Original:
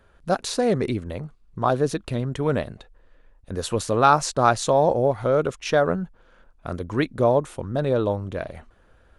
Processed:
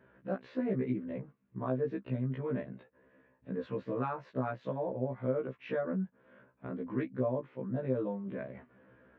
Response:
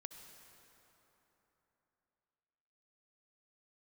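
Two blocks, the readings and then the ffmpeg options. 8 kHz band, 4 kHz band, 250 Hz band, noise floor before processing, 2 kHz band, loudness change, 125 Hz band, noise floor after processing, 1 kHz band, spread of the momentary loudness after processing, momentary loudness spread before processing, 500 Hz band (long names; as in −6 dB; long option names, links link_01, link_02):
below −40 dB, below −25 dB, −8.0 dB, −57 dBFS, −16.5 dB, −13.5 dB, −10.5 dB, −71 dBFS, −20.0 dB, 10 LU, 16 LU, −13.5 dB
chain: -af "acompressor=threshold=-42dB:ratio=2,highpass=frequency=110:width=0.5412,highpass=frequency=110:width=1.3066,equalizer=frequency=230:width_type=q:width=4:gain=8,equalizer=frequency=780:width_type=q:width=4:gain=-9,equalizer=frequency=1300:width_type=q:width=4:gain=-7,lowpass=frequency=2200:width=0.5412,lowpass=frequency=2200:width=1.3066,afftfilt=real='re*1.73*eq(mod(b,3),0)':imag='im*1.73*eq(mod(b,3),0)':win_size=2048:overlap=0.75,volume=3dB"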